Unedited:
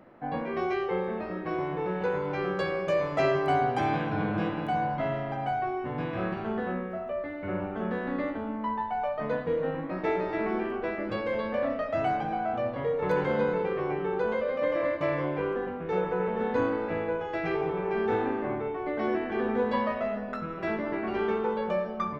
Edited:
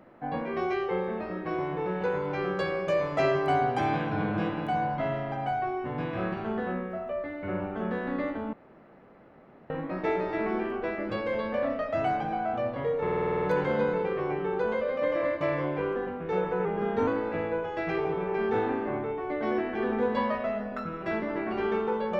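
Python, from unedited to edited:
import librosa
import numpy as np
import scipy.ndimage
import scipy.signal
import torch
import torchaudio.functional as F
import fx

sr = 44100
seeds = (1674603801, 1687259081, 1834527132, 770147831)

y = fx.edit(x, sr, fx.room_tone_fill(start_s=8.53, length_s=1.17),
    fx.stutter(start_s=13.02, slice_s=0.05, count=9),
    fx.speed_span(start_s=16.25, length_s=0.39, speed=0.92), tone=tone)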